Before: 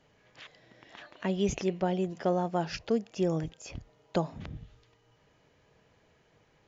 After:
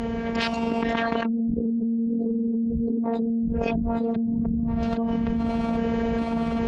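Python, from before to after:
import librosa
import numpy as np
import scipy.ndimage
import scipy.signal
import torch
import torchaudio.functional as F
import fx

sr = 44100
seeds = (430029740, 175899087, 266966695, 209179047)

y = fx.pitch_trill(x, sr, semitones=6.0, every_ms=412)
y = y + 10.0 ** (-19.0 / 20.0) * np.pad(y, (int(815 * sr / 1000.0), 0))[:len(y)]
y = fx.spec_erase(y, sr, start_s=1.55, length_s=1.49, low_hz=570.0, high_hz=3900.0)
y = fx.env_lowpass_down(y, sr, base_hz=430.0, full_db=-28.0)
y = fx.tilt_eq(y, sr, slope=-4.5)
y = fx.robotise(y, sr, hz=230.0)
y = fx.rider(y, sr, range_db=5, speed_s=0.5)
y = fx.env_lowpass_down(y, sr, base_hz=330.0, full_db=-24.0)
y = scipy.signal.sosfilt(scipy.signal.butter(2, 61.0, 'highpass', fs=sr, output='sos'), y)
y = fx.high_shelf(y, sr, hz=6500.0, db=-7.0)
y = fx.env_flatten(y, sr, amount_pct=100)
y = y * 10.0 ** (-4.5 / 20.0)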